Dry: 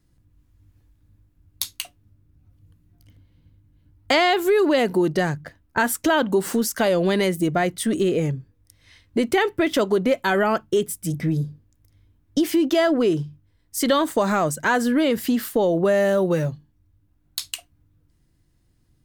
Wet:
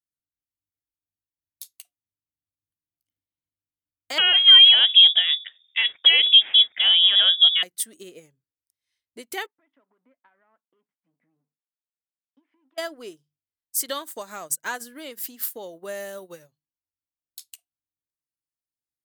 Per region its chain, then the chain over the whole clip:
0:04.18–0:07.63: parametric band 290 Hz +3 dB 0.71 octaves + voice inversion scrambler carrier 3,600 Hz + envelope flattener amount 50%
0:09.46–0:12.78: downward compressor 4 to 1, threshold −25 dBFS + power curve on the samples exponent 1.4 + loudspeaker in its box 180–2,100 Hz, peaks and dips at 260 Hz +10 dB, 370 Hz −8 dB, 980 Hz +4 dB
whole clip: RIAA equalisation recording; boost into a limiter +4.5 dB; expander for the loud parts 2.5 to 1, over −28 dBFS; level −3 dB

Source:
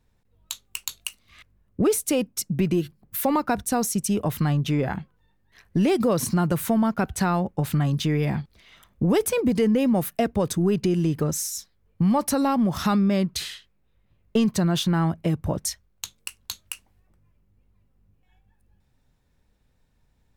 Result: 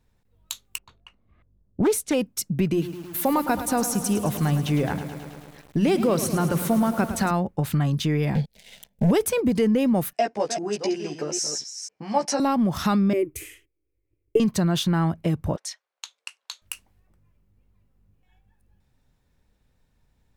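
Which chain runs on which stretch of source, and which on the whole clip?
0:00.78–0:02.14: low-pass that shuts in the quiet parts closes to 500 Hz, open at −19 dBFS + highs frequency-modulated by the lows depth 0.37 ms
0:02.71–0:07.31: mains-hum notches 60/120/180 Hz + feedback echo at a low word length 107 ms, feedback 80%, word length 7 bits, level −11 dB
0:08.35–0:09.11: leveller curve on the samples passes 3 + phaser with its sweep stopped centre 320 Hz, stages 6
0:10.13–0:12.40: delay that plays each chunk backwards 249 ms, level −8 dB + loudspeaker in its box 460–7,400 Hz, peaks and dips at 750 Hz +4 dB, 1,200 Hz −7 dB, 3,600 Hz −6 dB, 5,300 Hz +7 dB + double-tracking delay 14 ms −2.5 dB
0:13.13–0:14.40: noise gate −59 dBFS, range −11 dB + drawn EQ curve 130 Hz 0 dB, 210 Hz −30 dB, 300 Hz +14 dB, 480 Hz +4 dB, 720 Hz −12 dB, 1,600 Hz −13 dB, 2,300 Hz +1 dB, 4,000 Hz −26 dB, 6,700 Hz −6 dB, 11,000 Hz +2 dB
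0:15.56–0:16.62: high-pass filter 590 Hz 24 dB per octave + high-frequency loss of the air 71 metres
whole clip: no processing

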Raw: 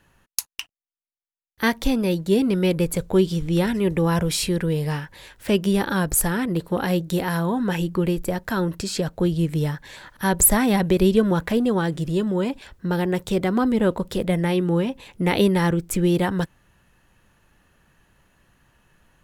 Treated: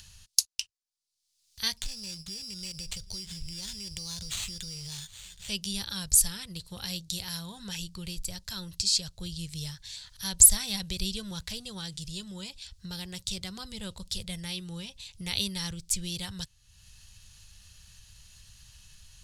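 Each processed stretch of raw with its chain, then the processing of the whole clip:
0:01.77–0:05.49: downward compressor, threshold −24 dBFS + sample-rate reduction 5,200 Hz + single-tap delay 770 ms −23.5 dB
whole clip: drawn EQ curve 100 Hz 0 dB, 260 Hz −29 dB, 360 Hz −24 dB, 1,800 Hz −13 dB, 4,600 Hz +12 dB, 10,000 Hz +5 dB, 15,000 Hz −8 dB; upward compression, threshold −36 dBFS; parametric band 200 Hz +7.5 dB 0.39 octaves; level −4 dB

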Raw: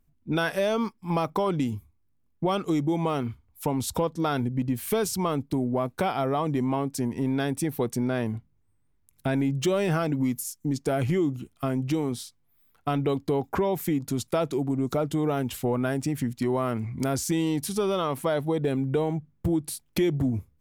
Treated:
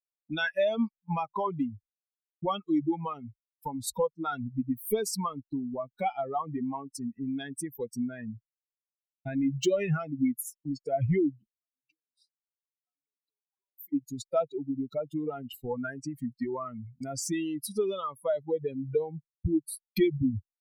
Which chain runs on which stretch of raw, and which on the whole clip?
0:11.57–0:13.93: high-pass filter 430 Hz 6 dB per octave + downward compressor 12 to 1, threshold −35 dBFS
whole clip: spectral dynamics exaggerated over time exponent 3; downward expander −50 dBFS; level +3.5 dB

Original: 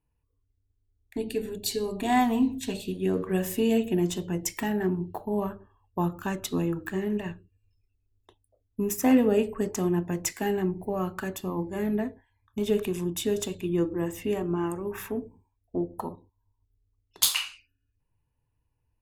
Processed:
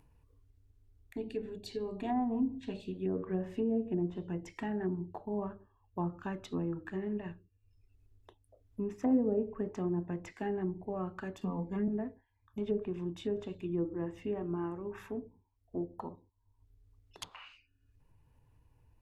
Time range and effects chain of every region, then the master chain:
0:11.41–0:11.88: parametric band 210 Hz +5 dB 0.36 octaves + comb filter 4.3 ms, depth 71% + multiband upward and downward compressor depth 70%
whole clip: treble cut that deepens with the level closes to 660 Hz, closed at −20 dBFS; high-shelf EQ 2,800 Hz −7.5 dB; upward compression, threshold −41 dBFS; level −7.5 dB

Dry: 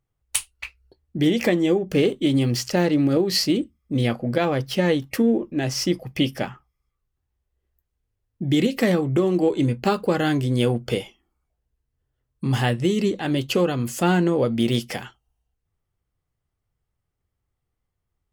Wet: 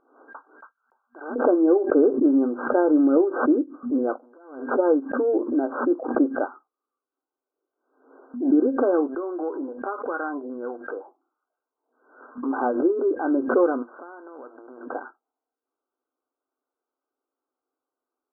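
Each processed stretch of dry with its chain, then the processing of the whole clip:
0:00.64–0:01.36: noise gate −57 dBFS, range −16 dB + high-pass filter 980 Hz 24 dB per octave + leveller curve on the samples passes 1
0:04.18–0:04.71: parametric band 620 Hz −10 dB 2.4 octaves + downward compressor, threshold −42 dBFS + tube saturation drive 45 dB, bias 0.4
0:09.07–0:12.46: spectral tilt +3 dB per octave + downward compressor 2 to 1, threshold −33 dBFS + auto-filter low-pass saw down 1.4 Hz 640–4,100 Hz
0:13.82–0:14.95: downward compressor 12 to 1, threshold −27 dBFS + every bin compressed towards the loudest bin 2 to 1
whole clip: brick-wall band-pass 240–1,600 Hz; background raised ahead of every attack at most 89 dB per second; level +2 dB

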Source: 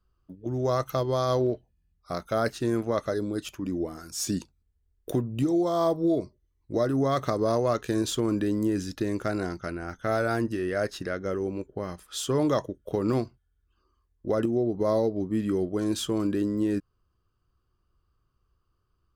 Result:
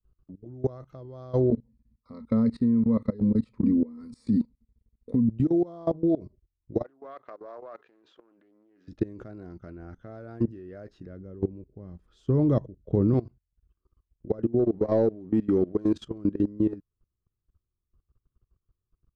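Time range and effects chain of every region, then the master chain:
0:01.52–0:05.29: EQ curve with evenly spaced ripples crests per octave 0.95, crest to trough 17 dB + downward compressor 1.5 to 1, threshold −34 dBFS + hollow resonant body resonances 230/1,300 Hz, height 13 dB
0:06.83–0:08.88: downward compressor 5 to 1, threshold −30 dBFS + band-pass filter 740–2,700 Hz + highs frequency-modulated by the lows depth 0.16 ms
0:11.06–0:13.14: low-shelf EQ 320 Hz +11.5 dB + expander for the loud parts, over −28 dBFS
0:14.59–0:15.95: low-shelf EQ 160 Hz −10 dB + leveller curve on the samples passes 1
whole clip: Bessel low-pass filter 3,800 Hz, order 2; tilt shelving filter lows +7.5 dB, about 650 Hz; output level in coarse steps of 21 dB

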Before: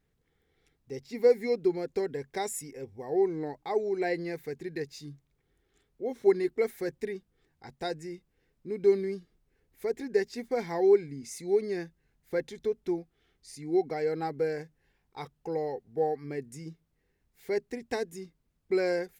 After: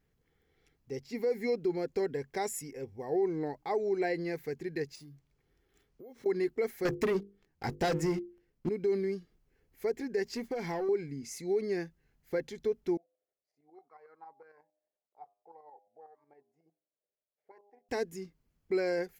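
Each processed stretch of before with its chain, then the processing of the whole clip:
0:04.95–0:06.26: downward compressor 10 to 1, threshold −47 dBFS + bad sample-rate conversion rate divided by 3×, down none, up hold
0:06.85–0:08.69: low-shelf EQ 320 Hz +4.5 dB + leveller curve on the samples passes 3 + mains-hum notches 50/100/150/200/250/300/350/400/450/500 Hz
0:10.25–0:10.89: downward compressor, threshold −33 dBFS + leveller curve on the samples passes 1
0:12.97–0:17.89: hum removal 101.9 Hz, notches 12 + shaped tremolo saw up 11 Hz, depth 60% + envelope filter 590–1,200 Hz, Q 11, up, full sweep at −27.5 dBFS
whole clip: parametric band 8,800 Hz −6.5 dB 0.29 octaves; notch filter 3,700 Hz, Q 13; brickwall limiter −22.5 dBFS

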